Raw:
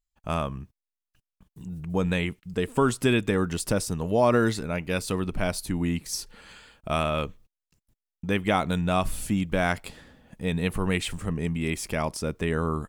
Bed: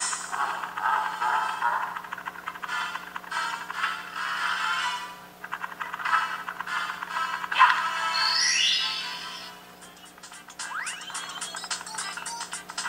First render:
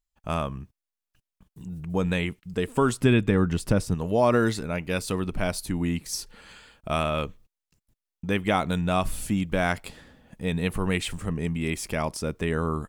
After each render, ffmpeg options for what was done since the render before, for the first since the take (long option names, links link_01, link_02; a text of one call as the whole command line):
ffmpeg -i in.wav -filter_complex "[0:a]asettb=1/sr,asplit=3[link_01][link_02][link_03];[link_01]atrim=end=3.004[link_04];[link_02]atrim=start=3:end=3.95,asetpts=PTS-STARTPTS,afade=type=in:duration=0.004:curve=qsin,afade=type=out:start_time=0.946:duration=0.004:curve=qsin,bass=frequency=250:gain=6,treble=frequency=4000:gain=-7[link_05];[link_03]atrim=start=3.946[link_06];[link_04][link_05]acrossfade=duration=0.004:curve1=hsin:curve2=qsin[link_07];[link_07][link_06]acrossfade=duration=0.004:curve1=qsin:curve2=hsin" out.wav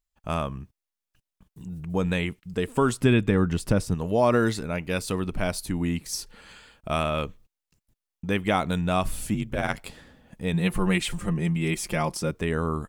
ffmpeg -i in.wav -filter_complex "[0:a]asettb=1/sr,asplit=3[link_01][link_02][link_03];[link_01]atrim=end=9.344[link_04];[link_02]atrim=start=9.34:end=9.78,asetpts=PTS-STARTPTS,afade=type=in:duration=0.004:curve=qsin,afade=type=out:start_time=0.436:duration=0.004:curve=qsin,aeval=exprs='val(0)*sin(2*PI*53*n/s)':channel_layout=same[link_05];[link_03]atrim=start=9.776[link_06];[link_04][link_05]acrossfade=duration=0.004:curve1=hsin:curve2=qsin[link_07];[link_07][link_06]acrossfade=duration=0.004:curve1=qsin:curve2=hsin,asettb=1/sr,asplit=3[link_08][link_09][link_10];[link_08]atrim=end=10.534[link_11];[link_09]atrim=start=10.53:end=12.31,asetpts=PTS-STARTPTS,afade=type=in:duration=0.004:curve=qsin,afade=type=out:start_time=1.776:duration=0.004:curve=qsin,aecho=1:1:5.7:0.73,atrim=end_sample=78498[link_12];[link_10]atrim=start=12.306[link_13];[link_11][link_12]acrossfade=duration=0.004:curve1=hsin:curve2=qsin[link_14];[link_14][link_13]acrossfade=duration=0.004:curve1=qsin:curve2=hsin" out.wav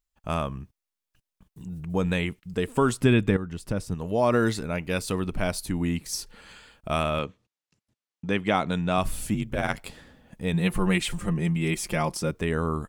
ffmpeg -i in.wav -filter_complex "[0:a]asettb=1/sr,asplit=3[link_01][link_02][link_03];[link_01]atrim=end=7.194[link_04];[link_02]atrim=start=7.19:end=8.98,asetpts=PTS-STARTPTS,afade=type=in:duration=0.004:curve=qsin,afade=type=out:start_time=1.786:duration=0.004:curve=qsin,highpass=110,lowpass=6800[link_05];[link_03]atrim=start=8.976[link_06];[link_04][link_05]acrossfade=duration=0.004:curve1=hsin:curve2=qsin[link_07];[link_07][link_06]acrossfade=duration=0.004:curve1=qsin:curve2=hsin,asplit=2[link_08][link_09];[link_08]atrim=end=3.37,asetpts=PTS-STARTPTS,afade=type=out:start_time=3.366:duration=0.004:curve=hsin:silence=0.237137[link_10];[link_09]atrim=start=3.37,asetpts=PTS-STARTPTS,afade=type=in:duration=1.12:silence=0.237137[link_11];[link_10][link_11]concat=n=2:v=0:a=1" out.wav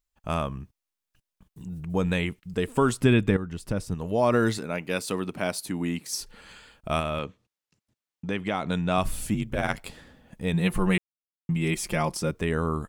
ffmpeg -i in.wav -filter_complex "[0:a]asettb=1/sr,asplit=3[link_01][link_02][link_03];[link_01]atrim=end=4.584[link_04];[link_02]atrim=start=4.58:end=6.21,asetpts=PTS-STARTPTS,afade=type=in:duration=0.004:curve=qsin,afade=type=out:start_time=1.626:duration=0.004:curve=qsin,highpass=180[link_05];[link_03]atrim=start=6.206[link_06];[link_04][link_05]acrossfade=duration=0.004:curve1=hsin:curve2=qsin[link_07];[link_07][link_06]acrossfade=duration=0.004:curve1=qsin:curve2=hsin,asettb=1/sr,asplit=3[link_08][link_09][link_10];[link_08]atrim=end=6.994[link_11];[link_09]atrim=start=6.99:end=8.69,asetpts=PTS-STARTPTS,afade=type=in:duration=0.004:curve=qsin,afade=type=out:start_time=1.696:duration=0.004:curve=qsin,acompressor=threshold=-26dB:ratio=2:attack=3.2:release=140:knee=1:detection=peak[link_12];[link_10]atrim=start=8.686[link_13];[link_11][link_12]acrossfade=duration=0.004:curve1=hsin:curve2=qsin[link_14];[link_14][link_13]acrossfade=duration=0.004:curve1=qsin:curve2=hsin,asplit=3[link_15][link_16][link_17];[link_15]atrim=end=10.98,asetpts=PTS-STARTPTS,afade=type=out:start_time=10.976:duration=0.004:curve=hsin[link_18];[link_16]atrim=start=10.98:end=11.49,asetpts=PTS-STARTPTS,volume=0[link_19];[link_17]atrim=start=11.49,asetpts=PTS-STARTPTS,afade=type=in:duration=0.004:curve=hsin[link_20];[link_18][link_19][link_20]concat=n=3:v=0:a=1" out.wav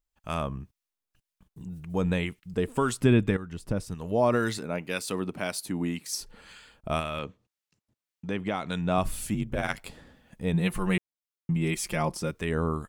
ffmpeg -i in.wav -filter_complex "[0:a]acrossover=split=1200[link_01][link_02];[link_01]aeval=exprs='val(0)*(1-0.5/2+0.5/2*cos(2*PI*1.9*n/s))':channel_layout=same[link_03];[link_02]aeval=exprs='val(0)*(1-0.5/2-0.5/2*cos(2*PI*1.9*n/s))':channel_layout=same[link_04];[link_03][link_04]amix=inputs=2:normalize=0" out.wav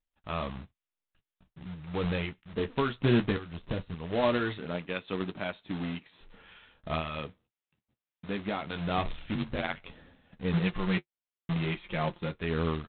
ffmpeg -i in.wav -af "aresample=8000,acrusher=bits=2:mode=log:mix=0:aa=0.000001,aresample=44100,flanger=delay=9.7:depth=4.6:regen=-37:speed=0.18:shape=triangular" out.wav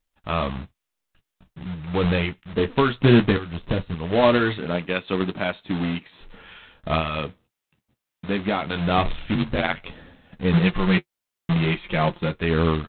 ffmpeg -i in.wav -af "volume=9.5dB" out.wav